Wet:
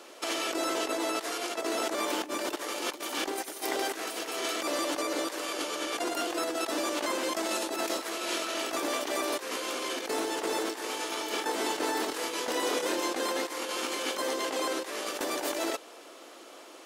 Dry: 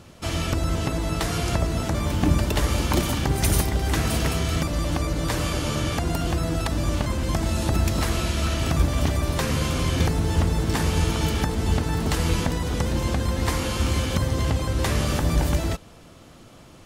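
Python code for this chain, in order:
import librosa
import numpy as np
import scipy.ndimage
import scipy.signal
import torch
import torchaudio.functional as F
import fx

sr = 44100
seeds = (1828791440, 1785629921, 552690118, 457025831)

y = scipy.signal.sosfilt(scipy.signal.butter(6, 320.0, 'highpass', fs=sr, output='sos'), x)
y = fx.over_compress(y, sr, threshold_db=-32.0, ratio=-0.5)
y = fx.doubler(y, sr, ms=26.0, db=-5.0, at=(10.87, 13.12))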